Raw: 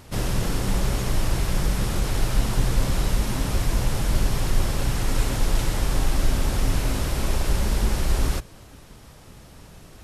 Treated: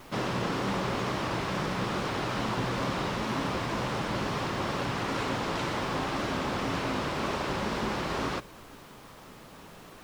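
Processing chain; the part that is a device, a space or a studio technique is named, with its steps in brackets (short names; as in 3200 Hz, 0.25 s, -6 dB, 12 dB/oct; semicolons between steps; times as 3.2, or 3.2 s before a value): horn gramophone (BPF 190–3800 Hz; bell 1100 Hz +5 dB 0.59 oct; wow and flutter; pink noise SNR 23 dB)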